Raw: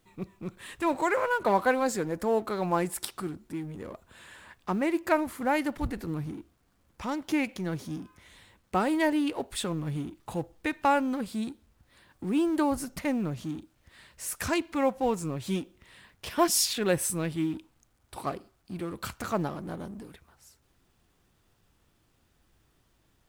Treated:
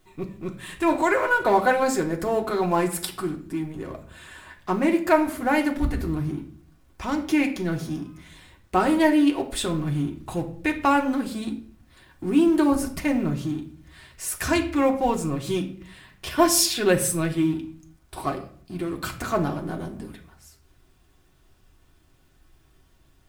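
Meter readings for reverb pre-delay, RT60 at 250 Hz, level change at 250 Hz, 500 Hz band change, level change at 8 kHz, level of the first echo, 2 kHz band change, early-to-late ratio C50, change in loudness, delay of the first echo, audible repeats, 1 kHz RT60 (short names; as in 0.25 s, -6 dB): 3 ms, 0.70 s, +7.0 dB, +5.5 dB, +5.0 dB, none, +6.5 dB, 12.0 dB, +6.0 dB, none, none, 0.50 s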